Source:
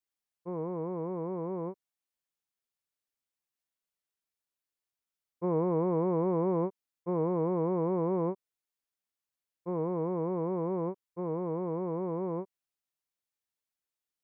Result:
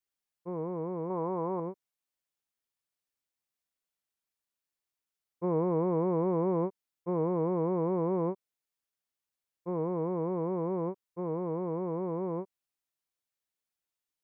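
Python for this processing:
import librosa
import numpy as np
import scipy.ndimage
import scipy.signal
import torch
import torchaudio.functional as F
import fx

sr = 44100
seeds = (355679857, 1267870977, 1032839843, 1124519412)

y = fx.peak_eq(x, sr, hz=940.0, db=8.5, octaves=1.4, at=(1.1, 1.6))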